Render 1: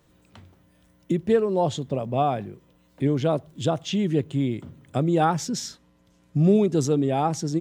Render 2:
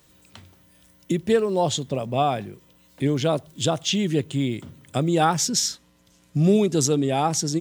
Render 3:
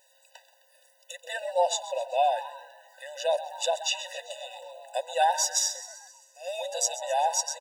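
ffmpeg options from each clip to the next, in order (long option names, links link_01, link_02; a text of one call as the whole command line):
ffmpeg -i in.wav -af "highshelf=frequency=2400:gain=12" out.wav
ffmpeg -i in.wav -filter_complex "[0:a]asplit=7[link_01][link_02][link_03][link_04][link_05][link_06][link_07];[link_02]adelay=130,afreqshift=140,volume=-15dB[link_08];[link_03]adelay=260,afreqshift=280,volume=-19.7dB[link_09];[link_04]adelay=390,afreqshift=420,volume=-24.5dB[link_10];[link_05]adelay=520,afreqshift=560,volume=-29.2dB[link_11];[link_06]adelay=650,afreqshift=700,volume=-33.9dB[link_12];[link_07]adelay=780,afreqshift=840,volume=-38.7dB[link_13];[link_01][link_08][link_09][link_10][link_11][link_12][link_13]amix=inputs=7:normalize=0,asubboost=boost=3:cutoff=190,afftfilt=real='re*eq(mod(floor(b*sr/1024/500),2),1)':imag='im*eq(mod(floor(b*sr/1024/500),2),1)':win_size=1024:overlap=0.75" out.wav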